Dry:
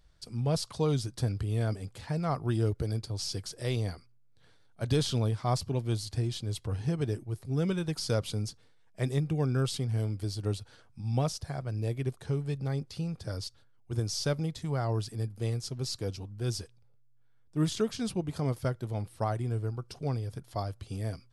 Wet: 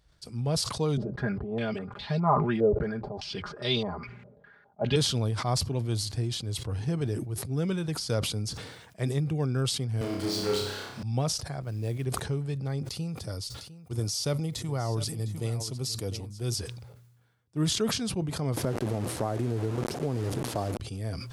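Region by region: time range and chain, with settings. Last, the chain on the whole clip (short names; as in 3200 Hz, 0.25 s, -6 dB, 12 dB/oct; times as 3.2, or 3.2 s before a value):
0.97–4.96 comb 4.9 ms, depth 96% + stepped low-pass 4.9 Hz 580–3700 Hz
10.01–11.03 BPF 230–6500 Hz + power-law curve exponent 0.5 + flutter echo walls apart 5.3 m, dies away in 0.76 s
11.62–12.05 expander -37 dBFS + short-mantissa float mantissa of 4-bit
12.89–16.56 high shelf 10000 Hz +12 dB + notch 1600 Hz, Q 7.9 + echo 0.704 s -15 dB
18.57–20.8 delta modulation 64 kbps, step -36.5 dBFS + bell 340 Hz +12.5 dB 2.7 oct + compressor 10:1, threshold -24 dBFS
whole clip: HPF 43 Hz; sustainer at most 51 dB/s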